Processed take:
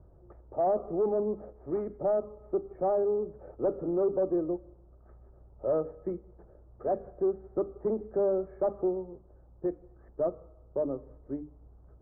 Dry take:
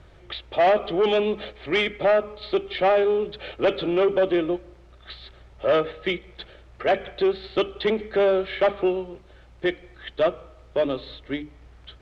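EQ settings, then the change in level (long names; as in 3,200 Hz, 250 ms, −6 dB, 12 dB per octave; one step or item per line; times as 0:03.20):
Bessel low-pass filter 660 Hz, order 8
−5.5 dB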